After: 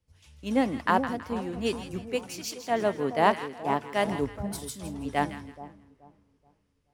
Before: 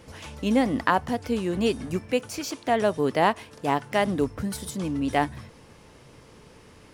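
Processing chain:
echo with a time of its own for lows and highs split 1,000 Hz, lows 428 ms, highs 163 ms, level −7.5 dB
multiband upward and downward expander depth 100%
level −5 dB

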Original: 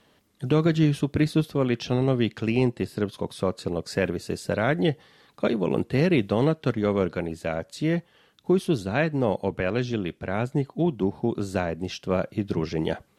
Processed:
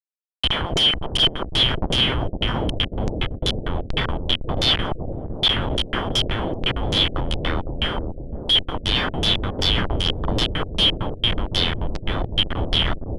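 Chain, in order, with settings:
band-splitting scrambler in four parts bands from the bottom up 3412
leveller curve on the samples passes 1
comparator with hysteresis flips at −21 dBFS
auto-filter low-pass saw down 2.6 Hz 470–6,300 Hz
on a send: bucket-brigade delay 508 ms, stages 2,048, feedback 60%, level −4 dB
on the sum: level +1.5 dB

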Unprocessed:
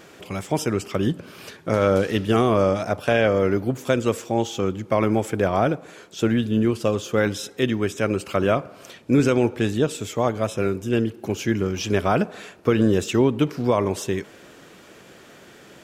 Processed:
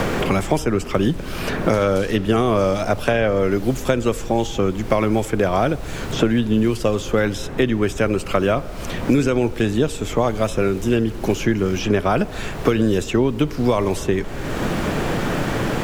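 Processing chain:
background noise brown −33 dBFS
multiband upward and downward compressor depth 100%
level +1.5 dB

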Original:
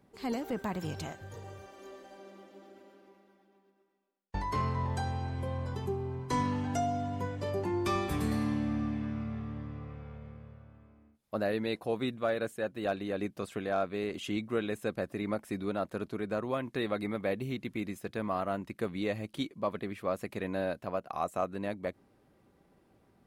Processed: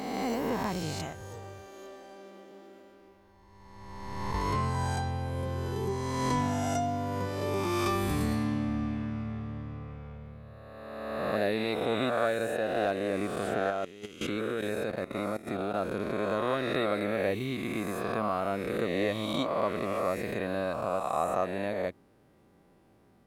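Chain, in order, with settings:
peak hold with a rise ahead of every peak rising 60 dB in 1.92 s
0:13.70–0:15.74: output level in coarse steps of 16 dB

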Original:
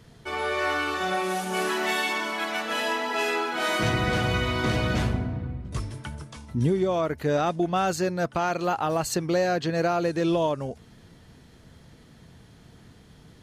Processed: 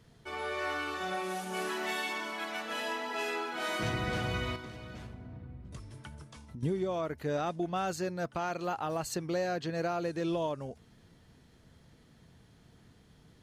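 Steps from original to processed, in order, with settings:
0:04.55–0:06.63: downward compressor 12 to 1, threshold −33 dBFS, peak gain reduction 13 dB
level −8.5 dB

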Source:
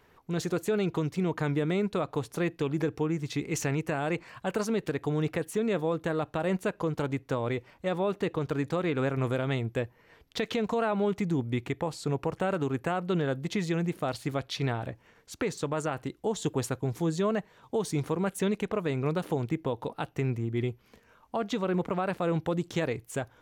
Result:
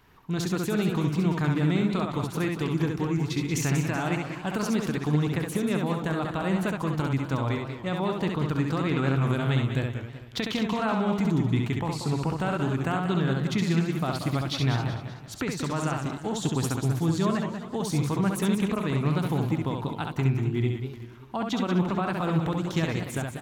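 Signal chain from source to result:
octave-band graphic EQ 500/2,000/8,000 Hz −11/−4/−4 dB
on a send: loudspeakers that aren't time-aligned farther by 23 metres −4 dB, 64 metres −11 dB
on the sum: feedback echo with a swinging delay time 190 ms, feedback 45%, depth 205 cents, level −10.5 dB
level +5 dB

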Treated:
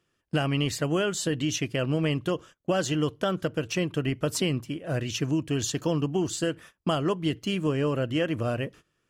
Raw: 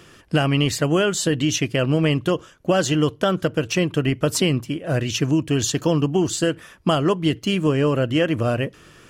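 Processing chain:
noise gate −39 dBFS, range −20 dB
level −7 dB

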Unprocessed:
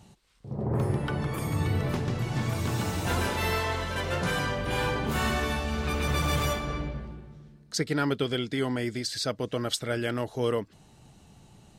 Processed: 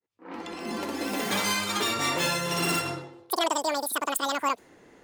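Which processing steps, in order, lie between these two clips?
fade in at the beginning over 3.08 s
low-pass that shuts in the quiet parts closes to 2,000 Hz, open at −24.5 dBFS
low-shelf EQ 96 Hz −9.5 dB
change of speed 2.34×
level +2.5 dB

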